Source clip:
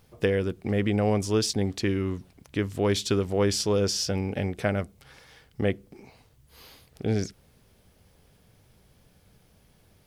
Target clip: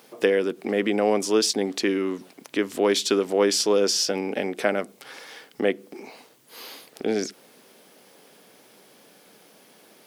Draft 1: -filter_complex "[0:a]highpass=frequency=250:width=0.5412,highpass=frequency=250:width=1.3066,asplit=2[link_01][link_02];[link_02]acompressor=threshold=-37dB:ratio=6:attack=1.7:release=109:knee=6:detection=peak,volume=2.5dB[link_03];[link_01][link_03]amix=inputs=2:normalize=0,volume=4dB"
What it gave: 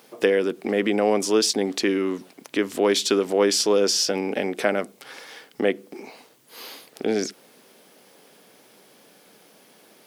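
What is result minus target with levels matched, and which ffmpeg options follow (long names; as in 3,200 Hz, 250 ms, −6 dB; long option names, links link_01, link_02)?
downward compressor: peak gain reduction −7.5 dB
-filter_complex "[0:a]highpass=frequency=250:width=0.5412,highpass=frequency=250:width=1.3066,asplit=2[link_01][link_02];[link_02]acompressor=threshold=-46dB:ratio=6:attack=1.7:release=109:knee=6:detection=peak,volume=2.5dB[link_03];[link_01][link_03]amix=inputs=2:normalize=0,volume=4dB"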